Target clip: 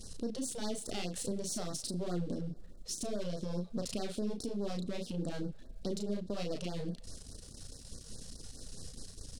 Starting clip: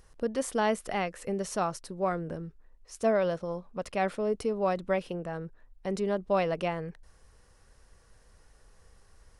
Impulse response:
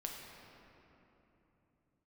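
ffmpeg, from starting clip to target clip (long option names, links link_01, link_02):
-filter_complex "[0:a]aeval=exprs='if(lt(val(0),0),0.251*val(0),val(0))':channel_layout=same,asplit=2[link_01][link_02];[link_02]adelay=34,volume=-4dB[link_03];[link_01][link_03]amix=inputs=2:normalize=0,acontrast=67,equalizer=frequency=125:width_type=o:width=1:gain=3,equalizer=frequency=250:width_type=o:width=1:gain=11,equalizer=frequency=1000:width_type=o:width=1:gain=-11,equalizer=frequency=2000:width_type=o:width=1:gain=-9,equalizer=frequency=4000:width_type=o:width=1:gain=10,equalizer=frequency=8000:width_type=o:width=1:gain=8,acompressor=threshold=-36dB:ratio=2,alimiter=level_in=7dB:limit=-24dB:level=0:latency=1:release=181,volume=-7dB,asplit=2[link_04][link_05];[1:a]atrim=start_sample=2205,lowshelf=frequency=430:gain=-10,adelay=39[link_06];[link_05][link_06]afir=irnorm=-1:irlink=0,volume=-16.5dB[link_07];[link_04][link_07]amix=inputs=2:normalize=0,afftfilt=real='re*(1-between(b*sr/1024,250*pow(2800/250,0.5+0.5*sin(2*PI*4.8*pts/sr))/1.41,250*pow(2800/250,0.5+0.5*sin(2*PI*4.8*pts/sr))*1.41))':imag='im*(1-between(b*sr/1024,250*pow(2800/250,0.5+0.5*sin(2*PI*4.8*pts/sr))/1.41,250*pow(2800/250,0.5+0.5*sin(2*PI*4.8*pts/sr))*1.41))':win_size=1024:overlap=0.75,volume=3.5dB"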